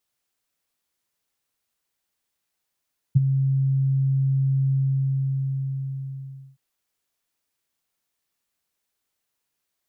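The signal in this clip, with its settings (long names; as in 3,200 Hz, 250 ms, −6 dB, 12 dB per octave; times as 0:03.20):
note with an ADSR envelope sine 135 Hz, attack 16 ms, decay 20 ms, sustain −9 dB, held 1.57 s, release 1,850 ms −9 dBFS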